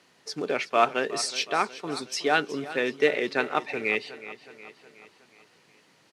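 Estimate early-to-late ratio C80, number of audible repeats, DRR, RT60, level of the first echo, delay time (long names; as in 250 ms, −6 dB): no reverb audible, 4, no reverb audible, no reverb audible, −15.5 dB, 367 ms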